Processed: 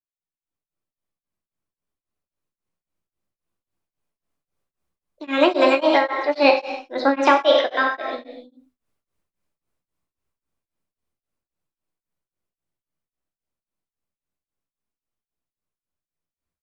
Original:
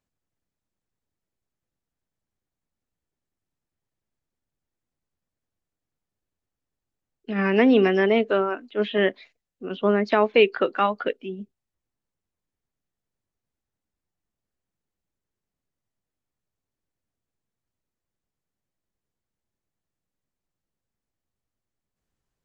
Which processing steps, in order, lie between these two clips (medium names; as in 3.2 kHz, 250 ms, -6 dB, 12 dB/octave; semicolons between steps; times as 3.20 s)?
Doppler pass-by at 9.43 s, 12 m/s, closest 10 m; gated-style reverb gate 450 ms falling, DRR 1.5 dB; speed mistake 33 rpm record played at 45 rpm; on a send: delay 98 ms -11.5 dB; on the sum: level rider gain up to 16 dB; peaking EQ 1.2 kHz +3 dB 0.77 oct; hum notches 50/100/150/200/250 Hz; tremolo of two beating tones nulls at 3.7 Hz